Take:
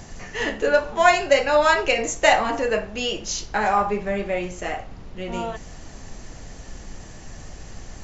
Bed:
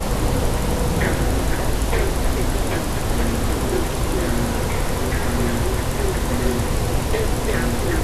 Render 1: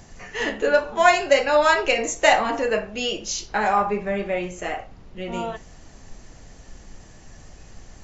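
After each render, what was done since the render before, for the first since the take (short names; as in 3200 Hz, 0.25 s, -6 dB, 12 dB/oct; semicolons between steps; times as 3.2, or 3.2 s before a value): noise print and reduce 6 dB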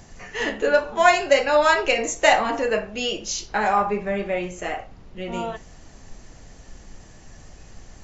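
nothing audible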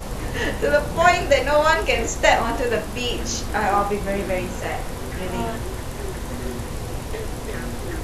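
add bed -8.5 dB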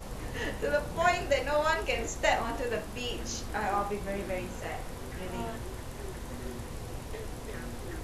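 gain -10.5 dB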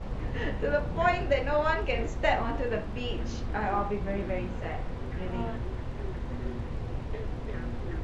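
LPF 3200 Hz 12 dB/oct; low shelf 280 Hz +7 dB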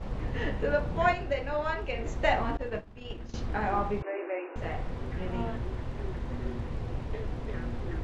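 1.13–2.06 gain -4.5 dB; 2.57–3.34 expander -25 dBFS; 4.02–4.56 brick-wall FIR band-pass 290–2900 Hz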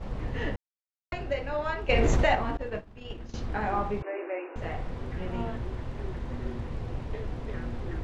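0.56–1.12 mute; 1.89–2.35 fast leveller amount 100%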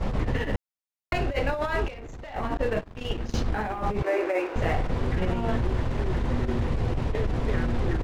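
sample leveller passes 2; negative-ratio compressor -25 dBFS, ratio -0.5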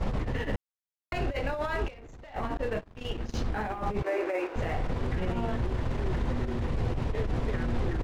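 limiter -20 dBFS, peak gain reduction 6 dB; upward expander 1.5:1, over -40 dBFS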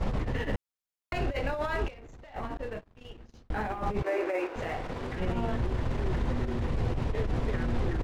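1.89–3.5 fade out; 4.53–5.2 low shelf 170 Hz -10.5 dB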